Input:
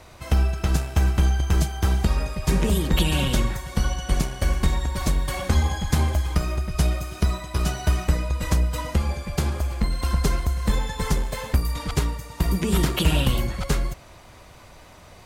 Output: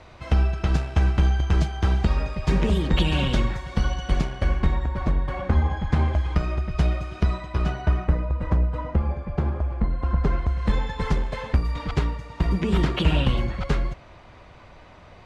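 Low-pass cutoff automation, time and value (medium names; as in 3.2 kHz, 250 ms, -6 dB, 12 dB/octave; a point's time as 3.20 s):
4.09 s 3.9 kHz
5.02 s 1.7 kHz
5.64 s 1.7 kHz
6.38 s 3.1 kHz
7.39 s 3.1 kHz
8.28 s 1.3 kHz
10.10 s 1.3 kHz
10.70 s 3.2 kHz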